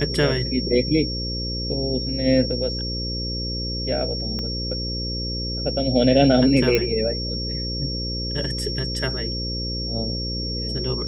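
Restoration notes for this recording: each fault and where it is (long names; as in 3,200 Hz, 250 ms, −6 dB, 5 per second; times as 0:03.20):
mains buzz 60 Hz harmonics 9 −29 dBFS
whistle 5,500 Hz −28 dBFS
0:04.39: click −18 dBFS
0:06.75: click −6 dBFS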